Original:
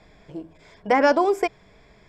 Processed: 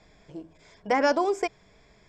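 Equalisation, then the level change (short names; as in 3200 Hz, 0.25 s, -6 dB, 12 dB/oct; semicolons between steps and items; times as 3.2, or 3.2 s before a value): synth low-pass 6900 Hz, resonance Q 2.2; -5.0 dB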